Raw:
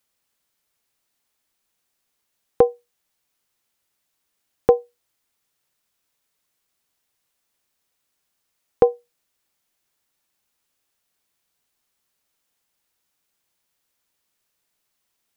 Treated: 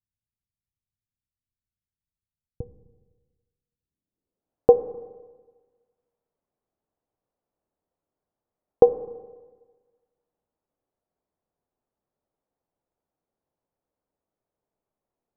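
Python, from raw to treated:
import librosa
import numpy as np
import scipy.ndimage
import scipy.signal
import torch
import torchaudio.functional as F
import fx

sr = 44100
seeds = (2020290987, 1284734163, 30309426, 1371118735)

y = fx.filter_sweep_lowpass(x, sr, from_hz=110.0, to_hz=660.0, start_s=3.55, end_s=4.54, q=1.2)
y = fx.rev_schroeder(y, sr, rt60_s=1.4, comb_ms=28, drr_db=12.5)
y = y * librosa.db_to_amplitude(-1.0)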